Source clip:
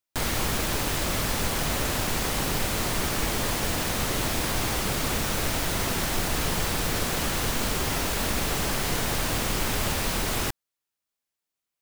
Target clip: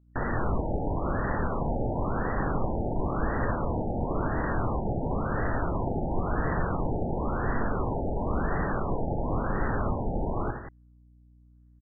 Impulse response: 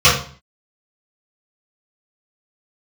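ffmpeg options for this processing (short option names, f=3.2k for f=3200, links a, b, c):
-af "aeval=exprs='val(0)+0.00112*(sin(2*PI*60*n/s)+sin(2*PI*2*60*n/s)/2+sin(2*PI*3*60*n/s)/3+sin(2*PI*4*60*n/s)/4+sin(2*PI*5*60*n/s)/5)':c=same,aecho=1:1:67|84|181:0.237|0.316|0.251,afftfilt=real='re*lt(b*sr/1024,880*pow(2000/880,0.5+0.5*sin(2*PI*0.96*pts/sr)))':imag='im*lt(b*sr/1024,880*pow(2000/880,0.5+0.5*sin(2*PI*0.96*pts/sr)))':win_size=1024:overlap=0.75"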